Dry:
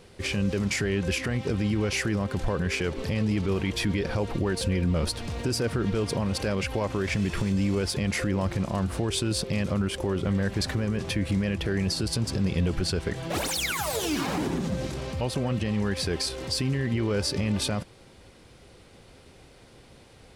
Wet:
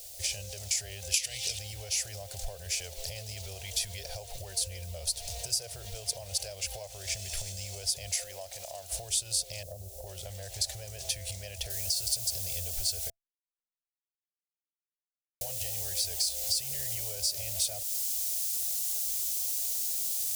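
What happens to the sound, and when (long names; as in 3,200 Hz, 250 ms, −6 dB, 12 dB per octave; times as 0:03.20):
0:01.14–0:01.59: high shelf with overshoot 1,800 Hz +12 dB, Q 1.5
0:08.16–0:08.92: bass and treble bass −13 dB, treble −2 dB
0:09.63–0:10.07: inverse Chebyshev low-pass filter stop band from 2,000 Hz, stop band 50 dB
0:11.70: noise floor change −59 dB −43 dB
0:13.10–0:15.41: silence
whole clip: drawn EQ curve 100 Hz 0 dB, 230 Hz −14 dB, 670 Hz +14 dB, 1,100 Hz −16 dB, 6,400 Hz +11 dB; downward compressor 4 to 1, threshold −29 dBFS; guitar amp tone stack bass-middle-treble 10-0-10; level +2.5 dB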